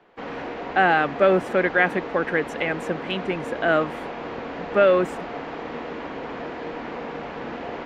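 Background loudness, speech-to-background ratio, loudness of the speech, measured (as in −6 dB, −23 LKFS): −33.0 LKFS, 10.5 dB, −22.5 LKFS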